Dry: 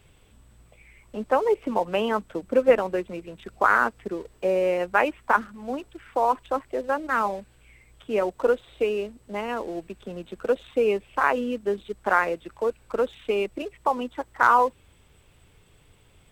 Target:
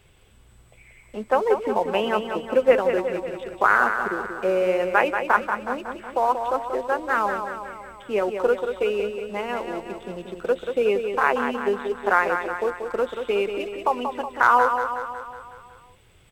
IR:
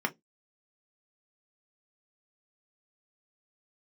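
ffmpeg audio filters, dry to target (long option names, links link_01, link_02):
-filter_complex "[0:a]aecho=1:1:184|368|552|736|920|1104|1288:0.447|0.255|0.145|0.0827|0.0472|0.0269|0.0153,asplit=2[link_01][link_02];[1:a]atrim=start_sample=2205,asetrate=70560,aresample=44100[link_03];[link_02][link_03]afir=irnorm=-1:irlink=0,volume=-15dB[link_04];[link_01][link_04]amix=inputs=2:normalize=0"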